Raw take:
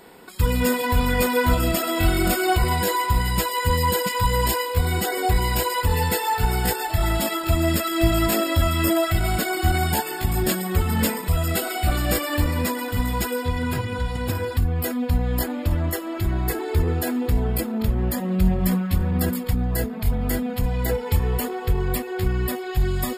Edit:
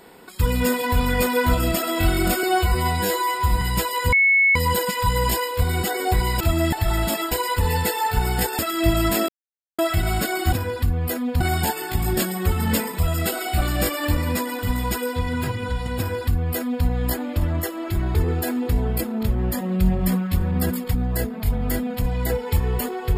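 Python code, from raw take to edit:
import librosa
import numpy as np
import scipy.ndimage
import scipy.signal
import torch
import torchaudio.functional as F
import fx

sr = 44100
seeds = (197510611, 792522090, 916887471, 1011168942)

y = fx.edit(x, sr, fx.stretch_span(start_s=2.43, length_s=0.79, factor=1.5),
    fx.insert_tone(at_s=3.73, length_s=0.43, hz=2200.0, db=-13.0),
    fx.swap(start_s=5.58, length_s=1.27, other_s=7.44, other_length_s=0.32),
    fx.silence(start_s=8.46, length_s=0.5),
    fx.duplicate(start_s=14.27, length_s=0.88, to_s=9.7),
    fx.cut(start_s=16.44, length_s=0.3), tone=tone)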